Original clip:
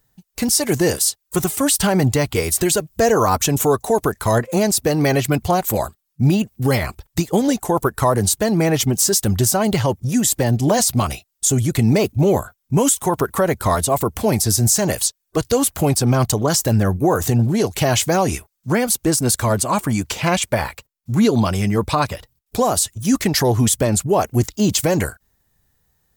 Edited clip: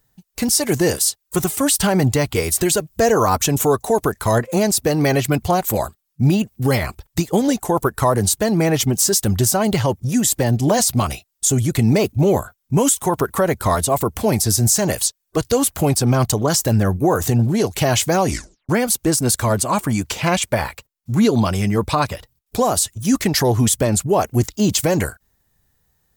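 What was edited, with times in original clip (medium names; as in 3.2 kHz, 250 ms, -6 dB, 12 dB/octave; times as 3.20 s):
18.29 s: tape stop 0.40 s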